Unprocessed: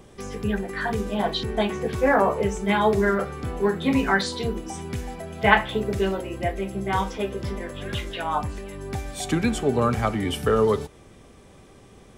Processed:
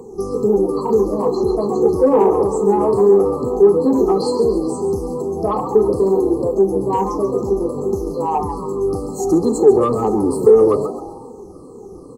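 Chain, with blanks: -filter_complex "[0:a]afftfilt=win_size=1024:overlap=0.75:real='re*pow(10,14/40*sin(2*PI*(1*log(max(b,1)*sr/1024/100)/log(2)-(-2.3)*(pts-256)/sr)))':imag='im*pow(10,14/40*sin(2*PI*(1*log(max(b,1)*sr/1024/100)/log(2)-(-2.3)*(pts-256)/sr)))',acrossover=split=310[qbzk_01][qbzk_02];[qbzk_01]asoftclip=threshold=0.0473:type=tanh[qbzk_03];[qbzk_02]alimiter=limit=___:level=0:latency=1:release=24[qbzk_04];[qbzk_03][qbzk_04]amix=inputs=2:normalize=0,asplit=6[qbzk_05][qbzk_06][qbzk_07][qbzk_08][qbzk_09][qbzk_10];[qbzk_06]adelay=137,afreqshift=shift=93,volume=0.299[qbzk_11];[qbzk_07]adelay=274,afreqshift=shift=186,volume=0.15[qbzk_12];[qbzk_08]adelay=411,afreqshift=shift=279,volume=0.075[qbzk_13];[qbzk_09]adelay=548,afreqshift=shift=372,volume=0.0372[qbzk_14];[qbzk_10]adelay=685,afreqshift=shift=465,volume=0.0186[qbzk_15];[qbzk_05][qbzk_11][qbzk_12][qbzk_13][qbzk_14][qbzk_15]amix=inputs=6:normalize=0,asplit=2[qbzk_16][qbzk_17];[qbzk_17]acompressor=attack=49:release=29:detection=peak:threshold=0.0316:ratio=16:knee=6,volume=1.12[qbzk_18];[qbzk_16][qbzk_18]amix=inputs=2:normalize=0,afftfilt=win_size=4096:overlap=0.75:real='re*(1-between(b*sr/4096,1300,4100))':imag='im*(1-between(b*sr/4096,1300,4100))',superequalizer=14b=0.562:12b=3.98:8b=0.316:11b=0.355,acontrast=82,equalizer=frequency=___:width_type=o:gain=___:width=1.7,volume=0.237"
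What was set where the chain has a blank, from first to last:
0.376, 400, 14.5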